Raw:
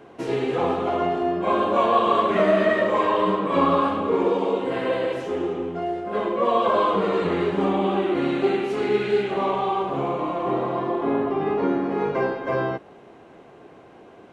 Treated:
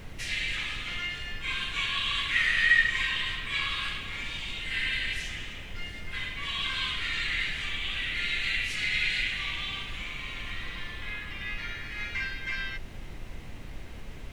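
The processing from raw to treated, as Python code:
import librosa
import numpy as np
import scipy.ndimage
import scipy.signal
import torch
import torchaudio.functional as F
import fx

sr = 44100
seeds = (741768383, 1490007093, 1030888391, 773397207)

y = scipy.signal.sosfilt(scipy.signal.cheby1(4, 1.0, 1900.0, 'highpass', fs=sr, output='sos'), x)
y = fx.dmg_noise_colour(y, sr, seeds[0], colour='brown', level_db=-47.0)
y = y * 10.0 ** (8.5 / 20.0)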